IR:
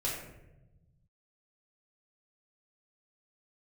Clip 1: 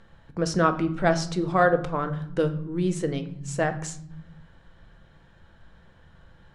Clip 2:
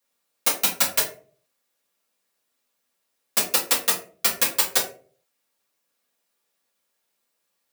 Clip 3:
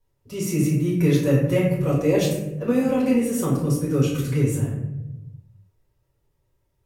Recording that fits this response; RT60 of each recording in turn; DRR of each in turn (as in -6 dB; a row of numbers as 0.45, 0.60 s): 3; 0.70, 0.45, 0.95 s; 7.5, -5.0, -6.5 dB